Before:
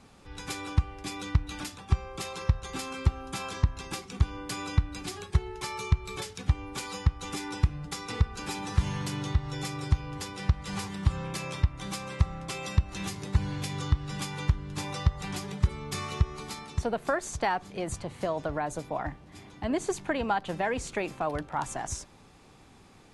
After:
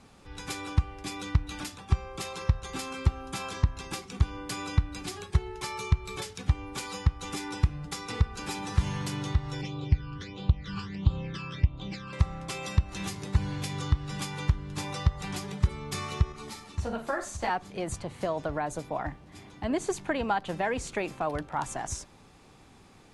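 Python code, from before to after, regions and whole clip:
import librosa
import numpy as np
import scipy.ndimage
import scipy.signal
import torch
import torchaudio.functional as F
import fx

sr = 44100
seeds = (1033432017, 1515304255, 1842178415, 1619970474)

y = fx.chain(x, sr, fx.lowpass(hz=4900.0, slope=24),
    fx.phaser_stages(stages=12, low_hz=640.0, high_hz=1900.0, hz=1.5, feedback_pct=25), at=(9.61, 12.13))
y = fx.chain(y, sr, fx.room_flutter(wall_m=7.5, rt60_s=0.33),
    fx.ensemble(), at=(16.32, 17.5))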